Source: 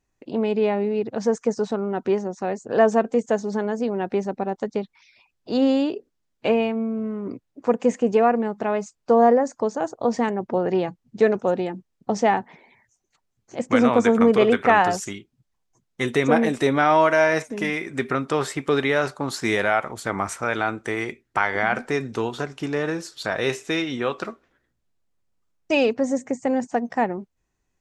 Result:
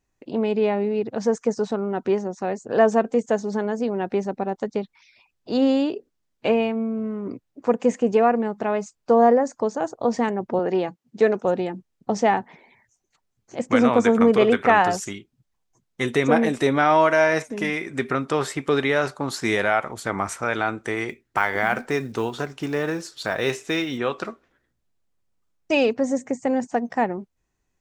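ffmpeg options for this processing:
ffmpeg -i in.wav -filter_complex "[0:a]asettb=1/sr,asplit=3[link_01][link_02][link_03];[link_01]atrim=end=10.594[link_04];[link_02]atrim=start=10.59:end=11.45,asetpts=PTS-STARTPTS,afade=type=in:duration=0.004:curve=qsin,afade=type=out:start_time=0.856:duration=0.004:curve=qsin,highpass=190[link_05];[link_03]atrim=start=11.446[link_06];[link_04][link_05]acrossfade=duration=0.004:curve1=hsin:curve2=qsin[link_07];[link_07][link_06]acrossfade=duration=0.004:curve1=qsin:curve2=hsin,asettb=1/sr,asplit=3[link_08][link_09][link_10];[link_08]atrim=end=21.094[link_11];[link_09]atrim=start=21.09:end=23.98,asetpts=PTS-STARTPTS,afade=type=in:duration=0.004:curve=qsin,afade=type=out:start_time=2.886:duration=0.004:curve=qsin,acrusher=bits=8:mode=log:mix=0:aa=0.000001[link_12];[link_10]atrim=start=23.976[link_13];[link_11][link_12]acrossfade=duration=0.004:curve1=hsin:curve2=qsin[link_14];[link_14][link_13]acrossfade=duration=0.004:curve1=qsin:curve2=hsin" out.wav

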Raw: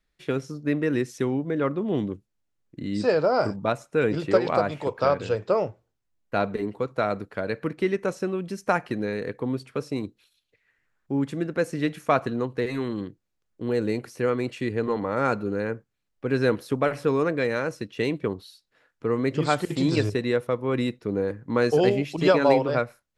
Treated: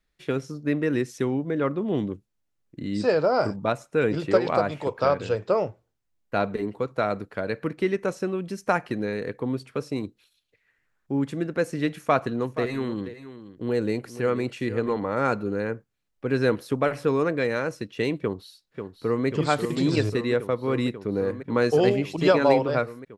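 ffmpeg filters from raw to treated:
ffmpeg -i in.wav -filter_complex "[0:a]asplit=3[link_01][link_02][link_03];[link_01]afade=type=out:start_time=12.38:duration=0.02[link_04];[link_02]aecho=1:1:477:0.211,afade=type=in:start_time=12.38:duration=0.02,afade=type=out:start_time=14.92:duration=0.02[link_05];[link_03]afade=type=in:start_time=14.92:duration=0.02[link_06];[link_04][link_05][link_06]amix=inputs=3:normalize=0,asplit=2[link_07][link_08];[link_08]afade=type=in:start_time=18.2:duration=0.01,afade=type=out:start_time=19.26:duration=0.01,aecho=0:1:540|1080|1620|2160|2700|3240|3780|4320|4860|5400|5940|6480:0.421697|0.358442|0.304676|0.258974|0.220128|0.187109|0.159043|0.135186|0.114908|0.0976721|0.0830212|0.0705681[link_09];[link_07][link_09]amix=inputs=2:normalize=0" out.wav

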